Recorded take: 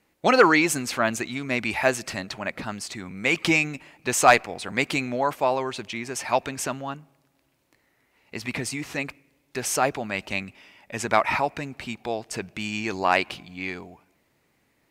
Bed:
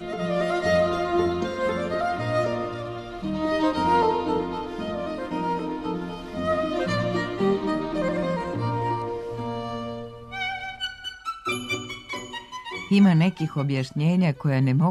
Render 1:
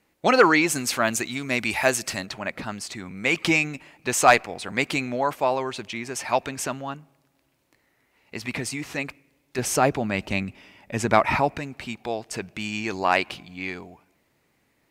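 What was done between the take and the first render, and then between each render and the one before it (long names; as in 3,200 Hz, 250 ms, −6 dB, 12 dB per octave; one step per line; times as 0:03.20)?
0:00.75–0:02.26: high-shelf EQ 4,900 Hz +9 dB
0:09.58–0:11.58: low-shelf EQ 420 Hz +9 dB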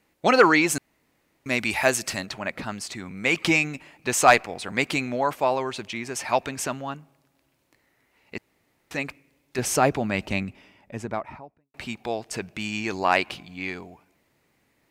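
0:00.78–0:01.46: fill with room tone
0:08.38–0:08.91: fill with room tone
0:10.17–0:11.74: fade out and dull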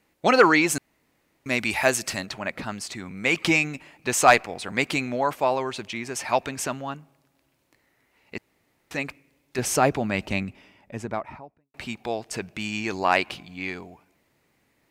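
no processing that can be heard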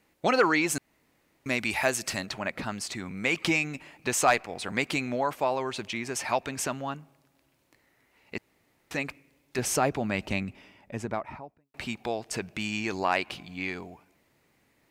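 downward compressor 1.5 to 1, threshold −30 dBFS, peak gain reduction 7.5 dB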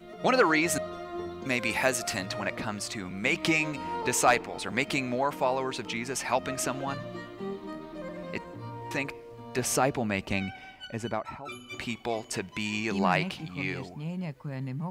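mix in bed −14 dB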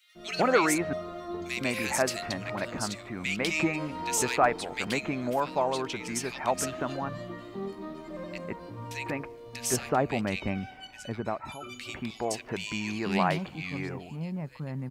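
multiband delay without the direct sound highs, lows 150 ms, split 2,100 Hz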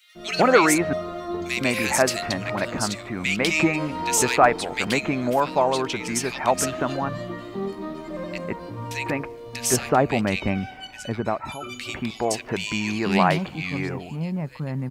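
level +7 dB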